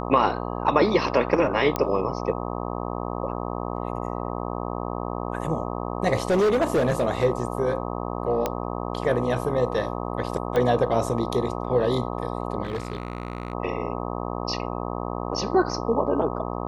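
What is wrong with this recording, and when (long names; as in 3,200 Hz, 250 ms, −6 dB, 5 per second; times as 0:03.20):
mains buzz 60 Hz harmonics 21 −30 dBFS
0:01.76: click −10 dBFS
0:06.28–0:07.05: clipping −17 dBFS
0:08.46: click −10 dBFS
0:10.56: click −13 dBFS
0:12.63–0:13.53: clipping −24 dBFS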